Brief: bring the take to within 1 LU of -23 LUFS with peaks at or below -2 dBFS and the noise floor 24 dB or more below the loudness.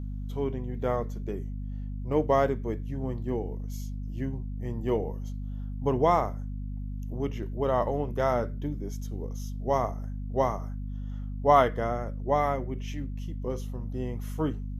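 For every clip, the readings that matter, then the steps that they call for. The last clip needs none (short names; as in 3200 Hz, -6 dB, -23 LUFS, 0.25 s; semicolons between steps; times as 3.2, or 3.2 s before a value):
hum 50 Hz; harmonics up to 250 Hz; hum level -32 dBFS; loudness -30.0 LUFS; peak -7.5 dBFS; loudness target -23.0 LUFS
-> de-hum 50 Hz, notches 5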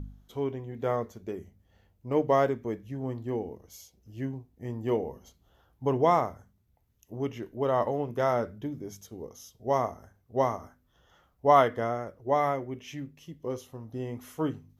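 hum none; loudness -30.0 LUFS; peak -7.5 dBFS; loudness target -23.0 LUFS
-> gain +7 dB; limiter -2 dBFS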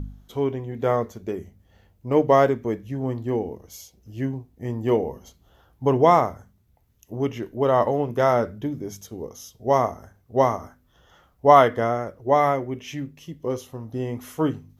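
loudness -23.0 LUFS; peak -2.0 dBFS; noise floor -62 dBFS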